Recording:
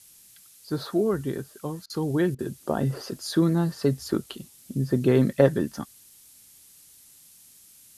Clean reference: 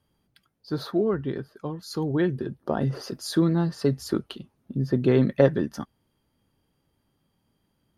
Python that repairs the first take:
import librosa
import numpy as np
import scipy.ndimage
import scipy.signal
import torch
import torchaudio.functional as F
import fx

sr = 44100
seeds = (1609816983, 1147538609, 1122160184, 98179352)

y = fx.fix_interpolate(x, sr, at_s=(1.86, 2.35), length_ms=37.0)
y = fx.noise_reduce(y, sr, print_start_s=7.28, print_end_s=7.78, reduce_db=19.0)